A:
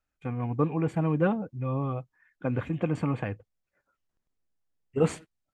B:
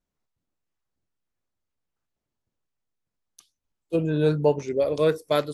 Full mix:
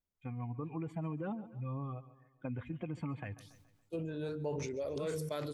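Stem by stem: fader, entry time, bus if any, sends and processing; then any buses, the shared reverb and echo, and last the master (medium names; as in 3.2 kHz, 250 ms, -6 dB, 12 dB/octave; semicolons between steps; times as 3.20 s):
-2.5 dB, 0.00 s, no send, echo send -19 dB, expander on every frequency bin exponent 1.5; peak limiter -23 dBFS, peak gain reduction 10.5 dB
-10.5 dB, 0.00 s, no send, echo send -22.5 dB, peaking EQ 87 Hz +10.5 dB 0.38 oct; de-hum 154.2 Hz, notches 3; decay stretcher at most 34 dB/s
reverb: none
echo: feedback delay 141 ms, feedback 44%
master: compression 2:1, threshold -40 dBFS, peak gain reduction 9 dB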